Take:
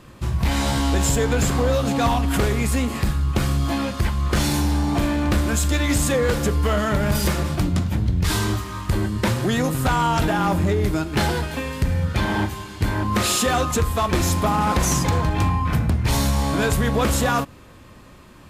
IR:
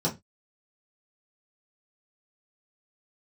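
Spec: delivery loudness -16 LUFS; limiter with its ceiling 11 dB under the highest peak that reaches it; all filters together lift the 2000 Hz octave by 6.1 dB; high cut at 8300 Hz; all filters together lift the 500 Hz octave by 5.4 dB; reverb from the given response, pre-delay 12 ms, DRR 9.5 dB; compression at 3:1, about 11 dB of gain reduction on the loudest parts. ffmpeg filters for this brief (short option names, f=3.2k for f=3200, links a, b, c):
-filter_complex "[0:a]lowpass=8.3k,equalizer=f=500:t=o:g=6,equalizer=f=2k:t=o:g=7.5,acompressor=threshold=-28dB:ratio=3,alimiter=level_in=1.5dB:limit=-24dB:level=0:latency=1,volume=-1.5dB,asplit=2[a][b];[1:a]atrim=start_sample=2205,adelay=12[c];[b][c]afir=irnorm=-1:irlink=0,volume=-18.5dB[d];[a][d]amix=inputs=2:normalize=0,volume=16dB"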